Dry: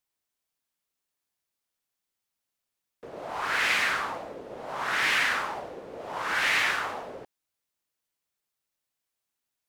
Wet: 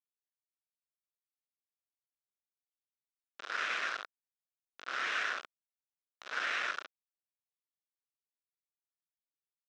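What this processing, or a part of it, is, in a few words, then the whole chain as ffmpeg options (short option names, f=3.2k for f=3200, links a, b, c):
hand-held game console: -af "acrusher=bits=3:mix=0:aa=0.000001,highpass=470,equalizer=f=880:t=q:w=4:g=-9,equalizer=f=1.4k:t=q:w=4:g=6,equalizer=f=2.1k:t=q:w=4:g=-5,equalizer=f=3.1k:t=q:w=4:g=-3,equalizer=f=4.5k:t=q:w=4:g=-8,lowpass=f=4.7k:w=0.5412,lowpass=f=4.7k:w=1.3066,volume=-8.5dB"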